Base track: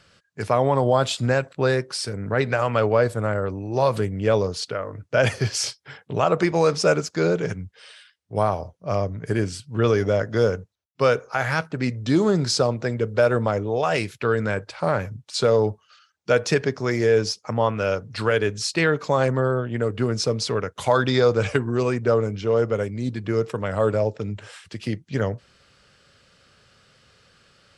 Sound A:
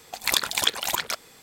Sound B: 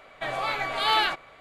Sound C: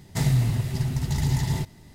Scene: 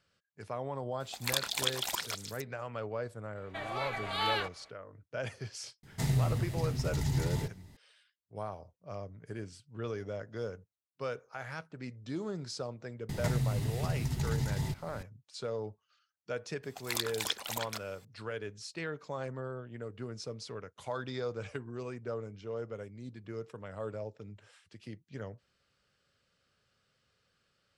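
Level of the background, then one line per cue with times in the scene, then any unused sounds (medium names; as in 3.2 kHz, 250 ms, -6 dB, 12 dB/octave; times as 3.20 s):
base track -18.5 dB
1.00 s: add A -9.5 dB + repeats whose band climbs or falls 151 ms, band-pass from 4.3 kHz, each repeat 0.7 oct, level -4.5 dB
3.33 s: add B -9 dB, fades 0.05 s
5.83 s: add C -7.5 dB
13.09 s: add C -9 dB + three bands compressed up and down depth 100%
16.63 s: add A -11.5 dB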